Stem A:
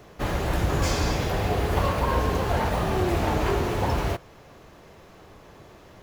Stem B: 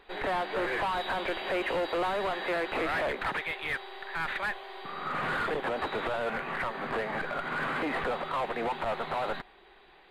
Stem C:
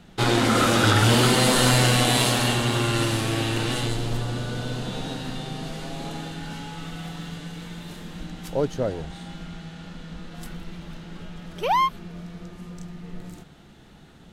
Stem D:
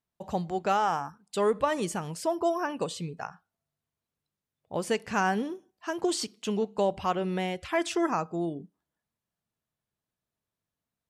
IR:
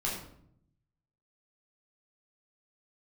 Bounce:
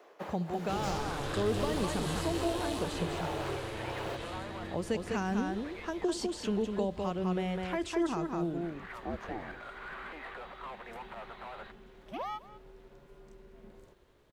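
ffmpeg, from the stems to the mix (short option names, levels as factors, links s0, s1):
-filter_complex "[0:a]highpass=f=360:w=0.5412,highpass=f=360:w=1.3066,tremolo=f=1.2:d=0.78,volume=0.562[s0];[1:a]tiltshelf=f=640:g=-7.5,adelay=2300,volume=0.188[s1];[2:a]lowshelf=f=98:g=-9,aeval=exprs='val(0)*sin(2*PI*210*n/s)':c=same,acrusher=bits=9:mix=0:aa=0.000001,adelay=500,volume=0.316,asplit=2[s2][s3];[s3]volume=0.0944[s4];[3:a]volume=0.891,asplit=3[s5][s6][s7];[s6]volume=0.562[s8];[s7]apad=whole_len=546962[s9];[s1][s9]sidechaincompress=threshold=0.0126:ratio=8:attack=16:release=563[s10];[s4][s8]amix=inputs=2:normalize=0,aecho=0:1:202:1[s11];[s0][s10][s2][s5][s11]amix=inputs=5:normalize=0,highshelf=f=3300:g=-9.5,acrossover=split=360|3000[s12][s13][s14];[s13]acompressor=threshold=0.0158:ratio=4[s15];[s12][s15][s14]amix=inputs=3:normalize=0"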